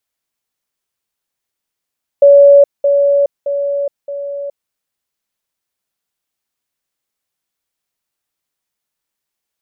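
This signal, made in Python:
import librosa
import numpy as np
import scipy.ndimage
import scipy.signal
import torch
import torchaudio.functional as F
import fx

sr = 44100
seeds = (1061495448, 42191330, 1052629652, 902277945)

y = fx.level_ladder(sr, hz=566.0, from_db=-2.0, step_db=-6.0, steps=4, dwell_s=0.42, gap_s=0.2)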